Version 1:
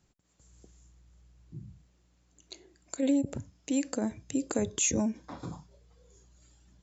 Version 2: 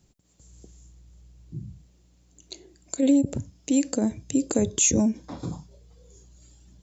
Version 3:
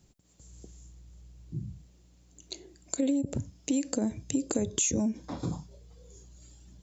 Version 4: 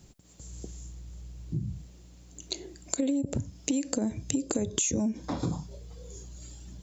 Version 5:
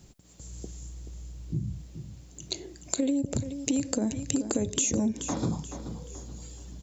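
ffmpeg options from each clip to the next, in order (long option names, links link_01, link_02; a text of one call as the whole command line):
ffmpeg -i in.wav -af "equalizer=frequency=1400:width_type=o:width=2:gain=-8.5,volume=8dB" out.wav
ffmpeg -i in.wav -af "acompressor=threshold=-25dB:ratio=6" out.wav
ffmpeg -i in.wav -af "acompressor=threshold=-37dB:ratio=2.5,volume=8dB" out.wav
ffmpeg -i in.wav -af "aecho=1:1:430|860|1290|1720:0.299|0.104|0.0366|0.0128,volume=1dB" out.wav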